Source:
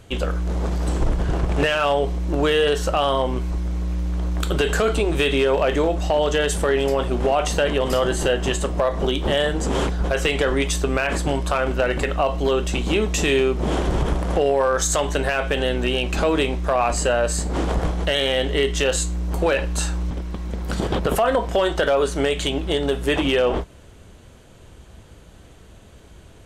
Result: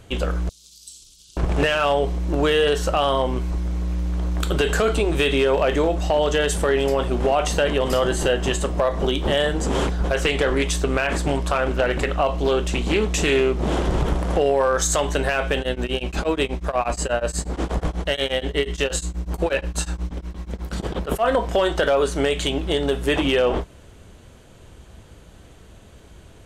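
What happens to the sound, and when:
0.49–1.37 inverse Chebyshev high-pass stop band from 2000 Hz
10.15–14.16 Doppler distortion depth 0.3 ms
15.58–21.26 beating tremolo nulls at 8.3 Hz

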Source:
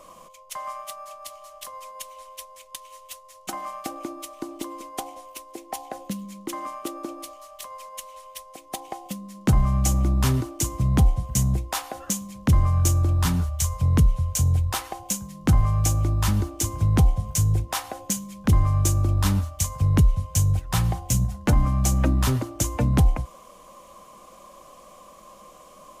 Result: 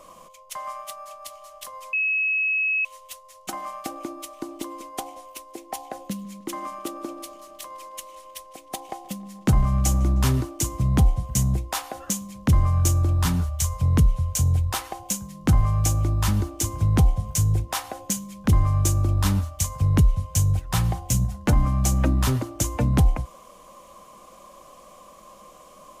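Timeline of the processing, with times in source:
1.93–2.85 bleep 2570 Hz -20 dBFS
6.03–10.46 darkening echo 0.155 s, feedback 76%, low-pass 4900 Hz, level -21.5 dB

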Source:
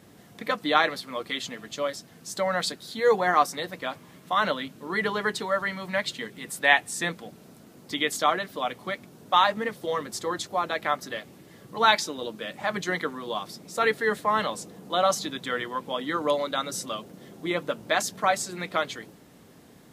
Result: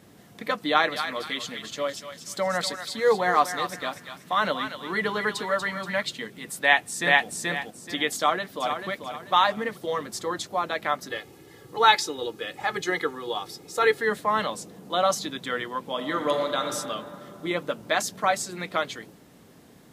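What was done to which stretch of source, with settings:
0.68–6.03 thinning echo 0.239 s, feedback 42%, high-pass 1200 Hz, level -6 dB
6.61–7.27 echo throw 0.43 s, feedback 25%, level -0.5 dB
8.16–8.89 echo throw 0.44 s, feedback 35%, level -7.5 dB
11.09–14.01 comb 2.4 ms
15.9–16.63 reverb throw, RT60 2.6 s, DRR 5 dB

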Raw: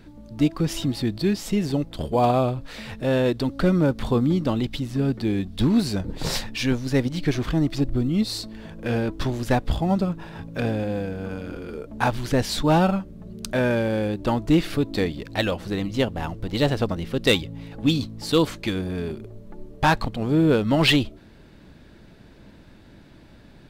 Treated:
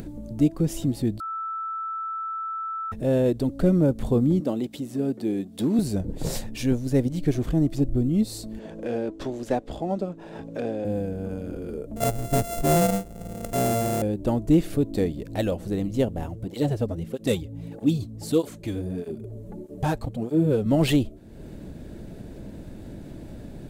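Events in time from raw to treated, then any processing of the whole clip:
1.2–2.92 bleep 1320 Hz -18.5 dBFS
4.4–5.79 HPF 230 Hz
8.59–10.85 three-band isolator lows -16 dB, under 250 Hz, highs -15 dB, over 7000 Hz
11.96–14.02 sample sorter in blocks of 64 samples
16.24–20.66 tape flanging out of phase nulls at 1.6 Hz, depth 6.4 ms
whole clip: band shelf 2200 Hz -11 dB 2.9 oct; upward compressor, threshold -28 dBFS

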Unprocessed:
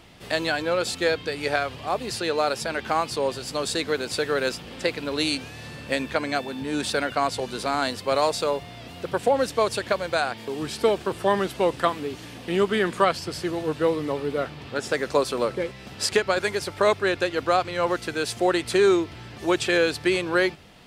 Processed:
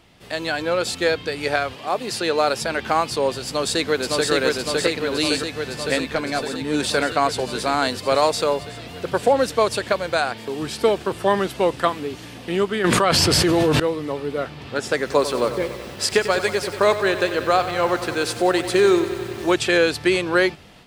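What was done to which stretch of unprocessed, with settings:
1.73–2.4 HPF 240 Hz -> 100 Hz
3.46–4.31 echo throw 0.56 s, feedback 75%, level -0.5 dB
6–6.74 tube stage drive 13 dB, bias 0.35
12.84–13.8 fast leveller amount 100%
14.97–19.54 lo-fi delay 94 ms, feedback 80%, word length 7-bit, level -12 dB
whole clip: AGC gain up to 9.5 dB; gain -3.5 dB

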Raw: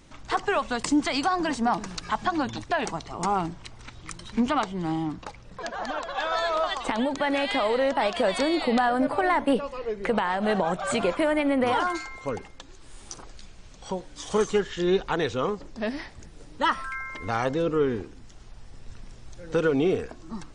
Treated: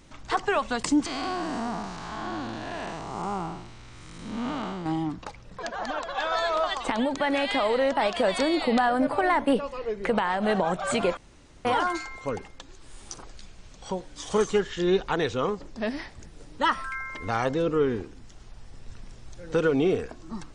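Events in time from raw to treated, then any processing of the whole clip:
1.06–4.86 time blur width 0.276 s
11.17–11.65 room tone

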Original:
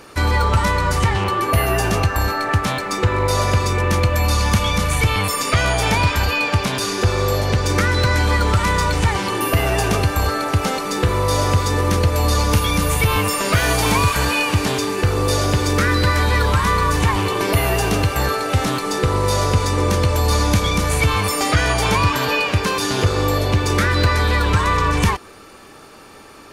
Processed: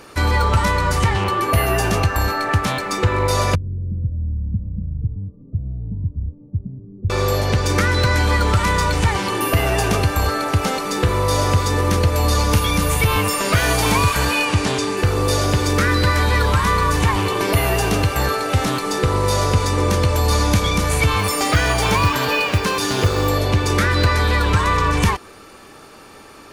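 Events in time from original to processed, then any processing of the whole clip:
3.55–7.1 ladder low-pass 240 Hz, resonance 20%
14.45–14.97 LPF 10000 Hz 24 dB/oct
21.19–23.3 companded quantiser 6-bit

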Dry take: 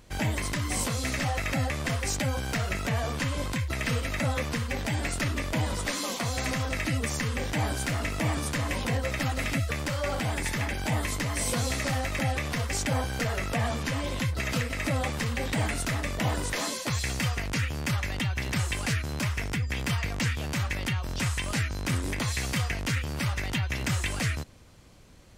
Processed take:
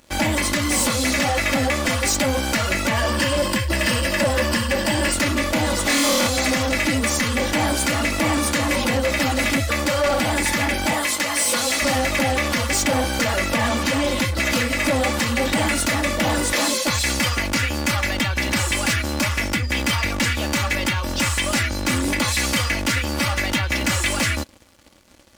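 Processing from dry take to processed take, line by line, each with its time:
2.97–5.14 ripple EQ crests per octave 1.3, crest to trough 9 dB
5.84–6.27 flutter echo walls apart 4.3 m, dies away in 0.66 s
10.93–11.82 HPF 600 Hz 6 dB/oct
whole clip: HPF 140 Hz 6 dB/oct; comb 3.5 ms, depth 79%; sample leveller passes 3

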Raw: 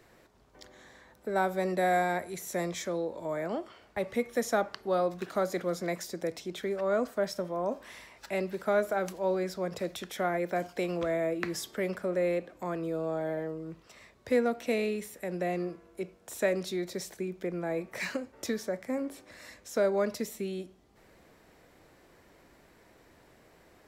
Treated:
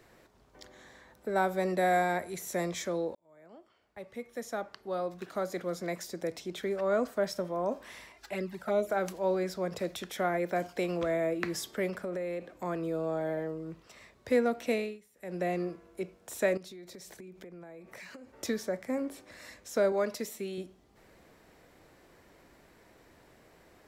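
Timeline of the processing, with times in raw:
3.15–6.74 fade in
8.12–8.9 envelope flanger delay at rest 3.1 ms, full sweep at -23.5 dBFS
11.87–12.6 compressor, threshold -31 dBFS
14.72–15.41 dip -20.5 dB, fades 0.27 s
16.57–18.36 compressor 10:1, threshold -44 dBFS
19.92–20.58 low shelf 160 Hz -11.5 dB

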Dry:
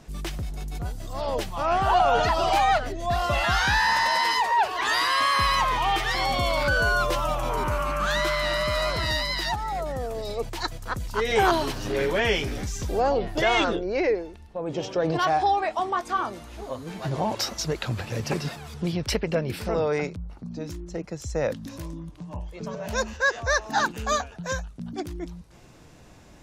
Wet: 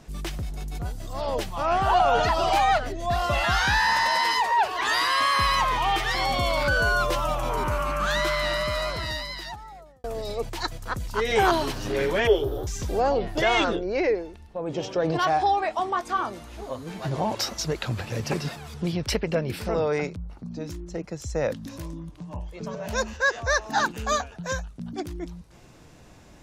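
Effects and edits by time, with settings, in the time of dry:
8.43–10.04 fade out
12.27–12.67 EQ curve 130 Hz 0 dB, 200 Hz -20 dB, 370 Hz +9 dB, 1300 Hz -2 dB, 2300 Hz -29 dB, 3300 Hz -3 dB, 4800 Hz -17 dB, 8400 Hz -15 dB, 14000 Hz +6 dB

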